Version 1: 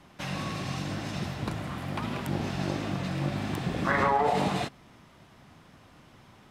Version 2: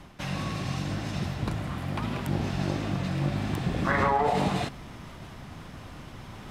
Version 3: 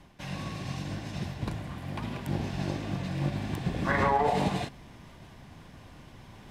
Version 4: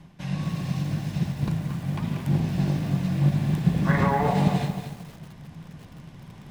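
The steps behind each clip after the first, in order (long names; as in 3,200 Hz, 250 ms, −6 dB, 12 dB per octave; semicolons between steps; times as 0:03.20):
low-shelf EQ 81 Hz +11.5 dB; reversed playback; upward compression, threshold −32 dBFS; reversed playback
notch filter 1,300 Hz, Q 7.7; expander for the loud parts 1.5 to 1, over −35 dBFS
parametric band 160 Hz +13.5 dB 0.66 octaves; feedback echo at a low word length 228 ms, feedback 35%, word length 7 bits, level −8 dB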